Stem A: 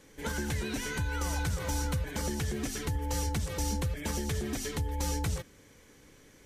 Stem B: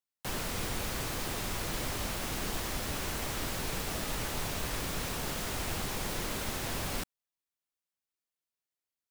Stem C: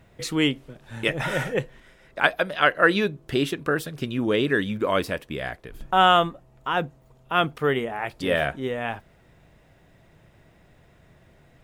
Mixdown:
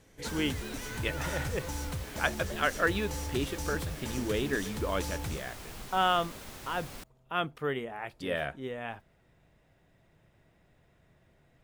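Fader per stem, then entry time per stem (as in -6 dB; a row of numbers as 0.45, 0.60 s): -5.5, -10.0, -9.5 dB; 0.00, 0.00, 0.00 s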